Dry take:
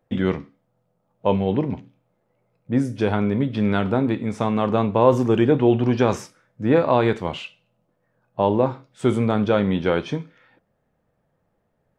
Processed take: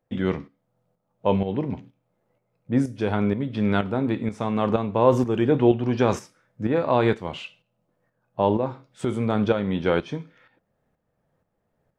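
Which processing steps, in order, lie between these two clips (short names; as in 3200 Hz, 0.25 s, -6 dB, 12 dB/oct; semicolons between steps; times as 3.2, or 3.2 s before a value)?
tremolo saw up 2.1 Hz, depth 60%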